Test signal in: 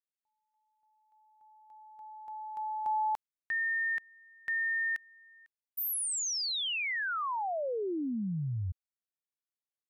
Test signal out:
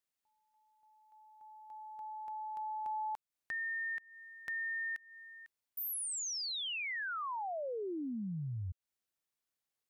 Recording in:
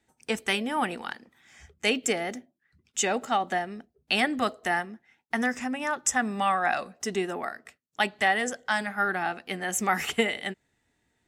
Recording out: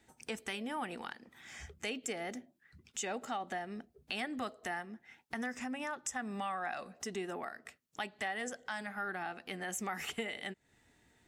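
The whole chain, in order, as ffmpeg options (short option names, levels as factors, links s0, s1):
-af "acompressor=threshold=0.00398:ratio=2.5:attack=2.7:release=174:detection=rms,volume=1.78"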